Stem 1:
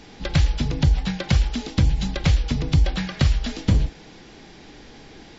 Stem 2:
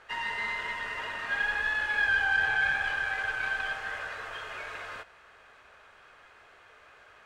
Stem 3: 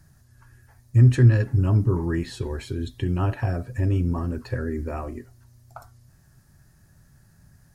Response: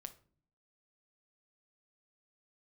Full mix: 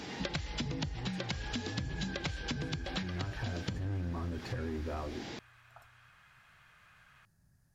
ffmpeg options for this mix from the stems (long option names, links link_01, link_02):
-filter_complex "[0:a]highpass=98,acompressor=threshold=-24dB:ratio=6,volume=2.5dB[link_01];[1:a]highpass=1100,acompressor=mode=upward:threshold=-38dB:ratio=2.5,volume=-14dB[link_02];[2:a]asoftclip=type=tanh:threshold=-22dB,volume=-5.5dB,afade=type=in:start_time=2.58:duration=0.7:silence=0.334965,afade=type=out:start_time=5.06:duration=0.29:silence=0.281838,asplit=3[link_03][link_04][link_05];[link_04]volume=-7.5dB[link_06];[link_05]apad=whole_len=237652[link_07];[link_01][link_07]sidechaincompress=threshold=-40dB:ratio=8:attack=16:release=222[link_08];[3:a]atrim=start_sample=2205[link_09];[link_06][link_09]afir=irnorm=-1:irlink=0[link_10];[link_08][link_02][link_03][link_10]amix=inputs=4:normalize=0,acompressor=threshold=-34dB:ratio=6"